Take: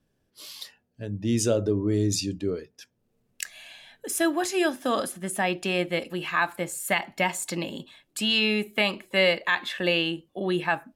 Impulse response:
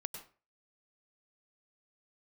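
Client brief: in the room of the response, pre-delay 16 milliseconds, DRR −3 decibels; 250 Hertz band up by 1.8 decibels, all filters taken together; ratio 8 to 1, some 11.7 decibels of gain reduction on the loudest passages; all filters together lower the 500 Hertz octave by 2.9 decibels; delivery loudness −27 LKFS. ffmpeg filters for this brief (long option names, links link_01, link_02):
-filter_complex "[0:a]equalizer=frequency=250:width_type=o:gain=4.5,equalizer=frequency=500:width_type=o:gain=-5.5,acompressor=threshold=-31dB:ratio=8,asplit=2[link_01][link_02];[1:a]atrim=start_sample=2205,adelay=16[link_03];[link_02][link_03]afir=irnorm=-1:irlink=0,volume=4.5dB[link_04];[link_01][link_04]amix=inputs=2:normalize=0,volume=4dB"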